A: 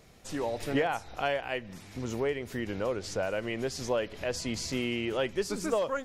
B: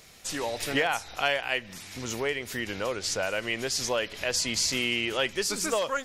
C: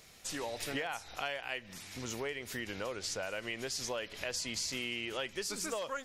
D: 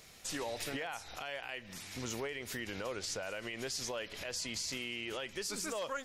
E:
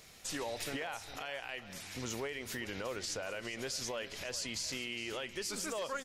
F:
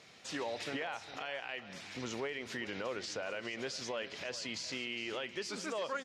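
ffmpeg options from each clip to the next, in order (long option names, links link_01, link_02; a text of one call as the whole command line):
ffmpeg -i in.wav -af "tiltshelf=frequency=1200:gain=-7,volume=4.5dB" out.wav
ffmpeg -i in.wav -af "acompressor=threshold=-31dB:ratio=2.5,volume=-5dB" out.wav
ffmpeg -i in.wav -af "alimiter=level_in=6dB:limit=-24dB:level=0:latency=1:release=39,volume=-6dB,volume=1dB" out.wav
ffmpeg -i in.wav -af "aecho=1:1:410:0.188" out.wav
ffmpeg -i in.wav -af "highpass=140,lowpass=4700,volume=1dB" out.wav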